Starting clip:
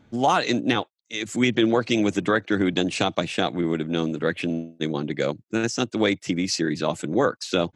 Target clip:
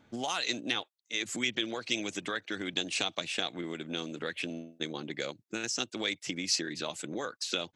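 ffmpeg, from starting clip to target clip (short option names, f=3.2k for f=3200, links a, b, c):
-filter_complex "[0:a]lowshelf=f=290:g=-9,acrossover=split=2300[a][b];[a]acompressor=threshold=-33dB:ratio=5[c];[c][b]amix=inputs=2:normalize=0,volume=-2dB"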